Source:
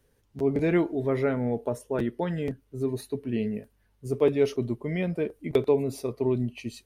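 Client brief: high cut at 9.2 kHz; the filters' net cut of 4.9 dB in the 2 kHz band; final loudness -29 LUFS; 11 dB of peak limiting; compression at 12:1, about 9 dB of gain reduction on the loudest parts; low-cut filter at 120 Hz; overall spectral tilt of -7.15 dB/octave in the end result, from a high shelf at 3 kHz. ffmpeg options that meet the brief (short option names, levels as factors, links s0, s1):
-af "highpass=120,lowpass=9200,equalizer=f=2000:t=o:g=-7.5,highshelf=f=3000:g=4,acompressor=threshold=0.0501:ratio=12,volume=2.66,alimiter=limit=0.112:level=0:latency=1"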